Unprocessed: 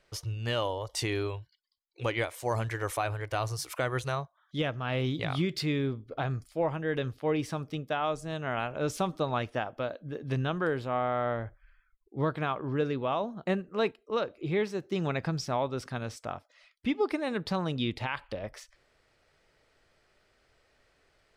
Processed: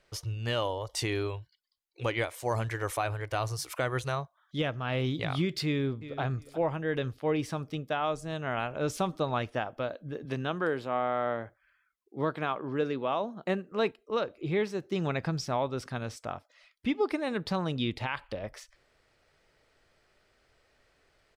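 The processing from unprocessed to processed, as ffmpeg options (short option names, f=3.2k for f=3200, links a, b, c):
-filter_complex "[0:a]asplit=2[a][b];[b]afade=t=in:st=5.65:d=0.01,afade=t=out:st=6.21:d=0.01,aecho=0:1:360|720:0.199526|0.0399052[c];[a][c]amix=inputs=2:normalize=0,asettb=1/sr,asplit=3[d][e][f];[d]atrim=end=10.254[g];[e]atrim=start=10.25:end=13.72,asetpts=PTS-STARTPTS,afade=t=in:d=0.004:c=qsin,afade=t=out:st=3.466:d=0.004:c=qsin,highpass=180[h];[f]atrim=start=13.716[i];[g][h]acrossfade=d=0.004:c1=hsin:c2=qsin[j];[j][i]acrossfade=d=0.004:c1=qsin:c2=hsin"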